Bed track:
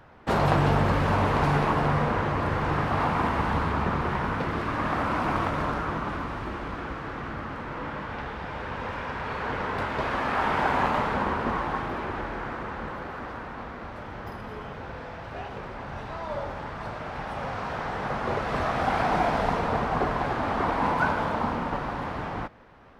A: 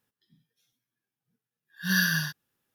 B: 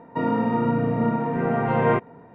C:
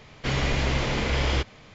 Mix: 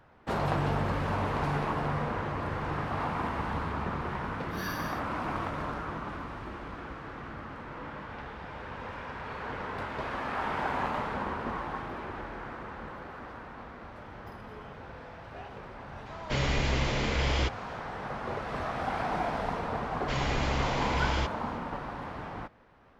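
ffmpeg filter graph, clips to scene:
-filter_complex "[3:a]asplit=2[a][b];[0:a]volume=-7dB[c];[1:a]atrim=end=2.74,asetpts=PTS-STARTPTS,volume=-15dB,afade=t=in:d=0.004:c=hsin,afade=t=out:st=2.736:d=0.004:c=hsin,adelay=2680[d];[a]atrim=end=1.74,asetpts=PTS-STARTPTS,volume=-3.5dB,afade=t=in:d=0.004:c=hsin,afade=t=out:st=1.736:d=0.004:c=hsin,adelay=16060[e];[b]atrim=end=1.74,asetpts=PTS-STARTPTS,volume=-6dB,afade=t=in:d=0.004:c=hsin,afade=t=out:st=1.736:d=0.004:c=hsin,adelay=19840[f];[c][d][e][f]amix=inputs=4:normalize=0"

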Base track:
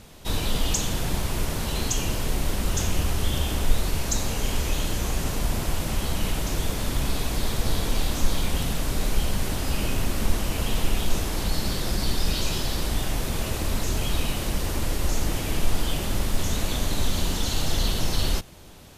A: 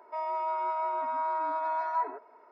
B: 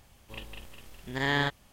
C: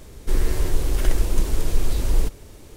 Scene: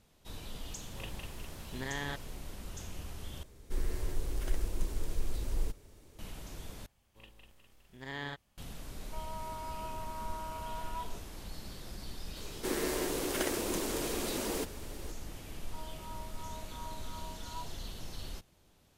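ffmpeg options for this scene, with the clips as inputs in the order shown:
-filter_complex "[2:a]asplit=2[a][b];[3:a]asplit=2[c][d];[1:a]asplit=2[e][f];[0:a]volume=-19dB[g];[a]alimiter=level_in=2dB:limit=-24dB:level=0:latency=1:release=71,volume=-2dB[h];[d]highpass=f=210:w=0.5412,highpass=f=210:w=1.3066[i];[f]asplit=2[j][k];[k]afreqshift=-2.8[l];[j][l]amix=inputs=2:normalize=1[m];[g]asplit=3[n][o][p];[n]atrim=end=3.434[q];[c]atrim=end=2.76,asetpts=PTS-STARTPTS,volume=-13.5dB[r];[o]atrim=start=6.186:end=6.864[s];[b]atrim=end=1.72,asetpts=PTS-STARTPTS,volume=-13.5dB[t];[p]atrim=start=8.576[u];[h]atrim=end=1.72,asetpts=PTS-STARTPTS,volume=-2.5dB,afade=t=in:d=0.004:c=hsin,afade=t=out:st=1.716:d=0.004:c=hsin,adelay=660[v];[e]atrim=end=2.51,asetpts=PTS-STARTPTS,volume=-12dB,afade=t=in:d=0.004:c=hsin,afade=t=out:st=2.506:d=0.004:c=hsin,adelay=9000[w];[i]atrim=end=2.76,asetpts=PTS-STARTPTS,volume=-1.5dB,afade=t=in:d=0.004:c=hsin,afade=t=out:st=2.756:d=0.004:c=hsin,adelay=545076S[x];[m]atrim=end=2.51,asetpts=PTS-STARTPTS,volume=-15dB,afade=t=in:d=0.004:c=hsin,afade=t=out:st=2.506:d=0.004:c=hsin,adelay=15600[y];[q][r]acrossfade=d=0.004:c1=hsin:c2=hsin[z];[z][s]acrossfade=d=0.004:c1=hsin:c2=hsin[aa];[aa][t]acrossfade=d=0.004:c1=hsin:c2=hsin[ab];[ab][u]acrossfade=d=0.004:c1=hsin:c2=hsin[ac];[ac][v][w][x][y]amix=inputs=5:normalize=0"

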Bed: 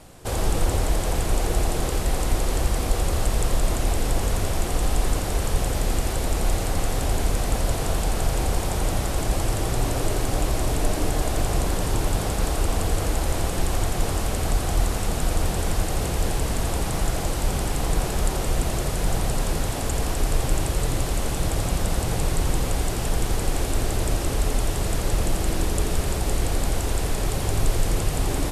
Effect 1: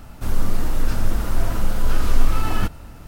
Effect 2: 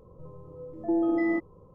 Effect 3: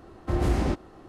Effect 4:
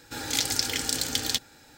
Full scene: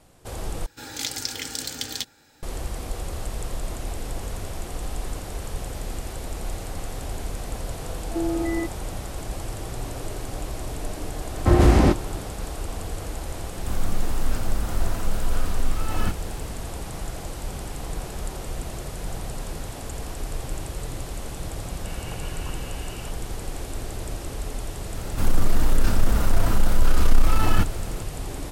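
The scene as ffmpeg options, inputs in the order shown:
-filter_complex "[4:a]asplit=2[a][b];[1:a]asplit=2[c][d];[0:a]volume=-8.5dB[e];[3:a]dynaudnorm=f=110:g=3:m=12dB[f];[c]dynaudnorm=f=100:g=3:m=11.5dB[g];[b]lowpass=f=2.6k:t=q:w=0.5098,lowpass=f=2.6k:t=q:w=0.6013,lowpass=f=2.6k:t=q:w=0.9,lowpass=f=2.6k:t=q:w=2.563,afreqshift=-3100[h];[d]acontrast=74[i];[e]asplit=2[j][k];[j]atrim=end=0.664[l];[a]atrim=end=1.77,asetpts=PTS-STARTPTS,volume=-3.5dB[m];[k]atrim=start=2.426[n];[2:a]atrim=end=1.74,asetpts=PTS-STARTPTS,volume=-1dB,afade=t=in:d=0.004:c=hsin,afade=t=out:st=1.736:d=0.004:c=hsin,adelay=7270[o];[f]atrim=end=1.08,asetpts=PTS-STARTPTS,volume=-1dB,afade=t=in:d=0.004:c=hsin,afade=t=out:st=1.076:d=0.004:c=hsin,adelay=11180[p];[g]atrim=end=3.07,asetpts=PTS-STARTPTS,volume=-10.5dB,afade=t=in:d=0.004:c=hsin,afade=t=out:st=3.066:d=0.004:c=hsin,adelay=13440[q];[h]atrim=end=1.77,asetpts=PTS-STARTPTS,volume=-9.5dB,afade=t=in:d=0.004:c=hsin,afade=t=out:st=1.766:d=0.004:c=hsin,adelay=21730[r];[i]atrim=end=3.07,asetpts=PTS-STARTPTS,volume=-4dB,afade=t=in:d=0.004:c=hsin,afade=t=out:st=3.066:d=0.004:c=hsin,adelay=24960[s];[l][m]acrossfade=d=0.004:c1=hsin:c2=hsin[t];[t][n]acrossfade=d=0.004:c1=hsin:c2=hsin[u];[u][o][p][q][r][s]amix=inputs=6:normalize=0"

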